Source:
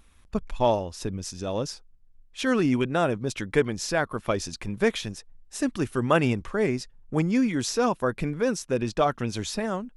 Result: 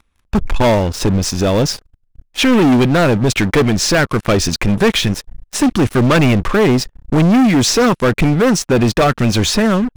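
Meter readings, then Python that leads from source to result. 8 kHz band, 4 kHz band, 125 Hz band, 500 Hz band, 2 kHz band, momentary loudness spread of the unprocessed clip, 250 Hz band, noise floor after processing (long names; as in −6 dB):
+14.5 dB, +16.0 dB, +15.5 dB, +10.5 dB, +12.5 dB, 11 LU, +13.5 dB, −62 dBFS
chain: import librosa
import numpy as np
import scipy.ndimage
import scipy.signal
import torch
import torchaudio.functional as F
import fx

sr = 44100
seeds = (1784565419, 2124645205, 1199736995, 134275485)

y = fx.lowpass(x, sr, hz=3800.0, slope=6)
y = fx.dynamic_eq(y, sr, hz=790.0, q=0.72, threshold_db=-36.0, ratio=4.0, max_db=-7)
y = fx.leveller(y, sr, passes=5)
y = F.gain(torch.from_numpy(y), 3.0).numpy()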